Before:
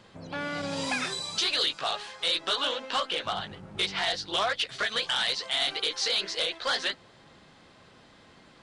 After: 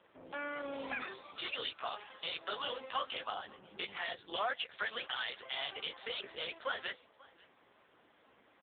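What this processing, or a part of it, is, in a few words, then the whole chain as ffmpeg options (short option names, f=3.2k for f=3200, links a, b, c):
satellite phone: -af "highpass=300,lowpass=3.4k,aecho=1:1:536:0.0668,volume=-5dB" -ar 8000 -c:a libopencore_amrnb -b:a 5900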